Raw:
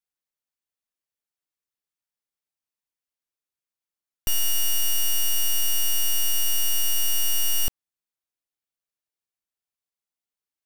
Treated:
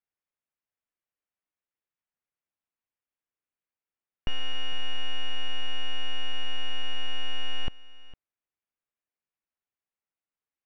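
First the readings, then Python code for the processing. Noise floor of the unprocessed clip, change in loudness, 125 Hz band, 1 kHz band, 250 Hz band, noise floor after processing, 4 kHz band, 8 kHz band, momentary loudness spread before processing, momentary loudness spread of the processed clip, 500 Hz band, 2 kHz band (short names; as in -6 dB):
under -85 dBFS, -12.5 dB, n/a, 0.0 dB, 0.0 dB, under -85 dBFS, -5.0 dB, -31.5 dB, 3 LU, 4 LU, -0.5 dB, -1.0 dB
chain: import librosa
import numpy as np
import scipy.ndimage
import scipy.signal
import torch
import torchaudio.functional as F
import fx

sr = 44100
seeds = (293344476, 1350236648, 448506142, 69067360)

p1 = scipy.signal.sosfilt(scipy.signal.butter(4, 2700.0, 'lowpass', fs=sr, output='sos'), x)
y = p1 + fx.echo_single(p1, sr, ms=456, db=-19.0, dry=0)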